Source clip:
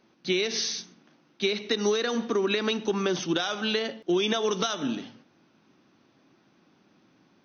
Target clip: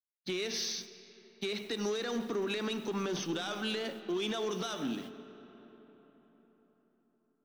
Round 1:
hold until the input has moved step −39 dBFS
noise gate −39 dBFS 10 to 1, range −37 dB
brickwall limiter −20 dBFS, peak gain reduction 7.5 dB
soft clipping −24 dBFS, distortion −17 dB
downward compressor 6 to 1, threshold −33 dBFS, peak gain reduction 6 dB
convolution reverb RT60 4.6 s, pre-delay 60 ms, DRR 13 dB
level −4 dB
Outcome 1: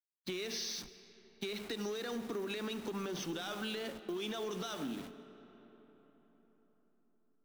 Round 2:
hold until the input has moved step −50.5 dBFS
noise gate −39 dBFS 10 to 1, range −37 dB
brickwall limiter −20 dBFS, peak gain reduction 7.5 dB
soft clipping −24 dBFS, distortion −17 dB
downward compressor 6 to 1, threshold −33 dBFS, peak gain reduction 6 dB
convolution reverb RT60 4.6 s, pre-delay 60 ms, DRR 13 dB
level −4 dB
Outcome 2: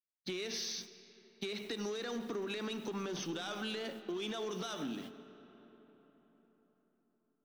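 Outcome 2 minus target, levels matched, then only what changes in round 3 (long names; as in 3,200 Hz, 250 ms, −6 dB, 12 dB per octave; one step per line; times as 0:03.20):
downward compressor: peak gain reduction +6 dB
remove: downward compressor 6 to 1, threshold −33 dBFS, peak gain reduction 6 dB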